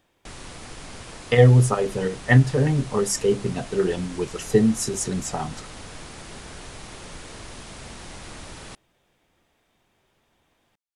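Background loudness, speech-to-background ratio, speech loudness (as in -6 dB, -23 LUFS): -40.0 LUFS, 19.0 dB, -21.0 LUFS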